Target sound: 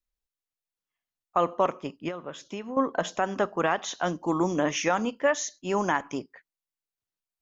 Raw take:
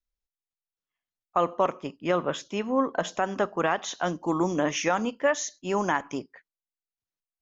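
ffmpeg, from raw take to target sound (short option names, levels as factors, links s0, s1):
-filter_complex "[0:a]asettb=1/sr,asplit=3[s0][s1][s2];[s0]atrim=end=2.084[s3];[s1]atrim=start=2.08:end=2.77,asetpts=PTS-STARTPTS,afade=t=in:d=0.004:c=qsin,afade=t=out:st=0.686:d=0.004:c=qsin,acompressor=threshold=0.0251:ratio=10[s4];[s2]atrim=start=2.766[s5];[s3][s4]acrossfade=d=0.004:c1=hsin:c2=qsin[s6];[s6][s5]acrossfade=d=0.004:c1=qsin:c2=hsin"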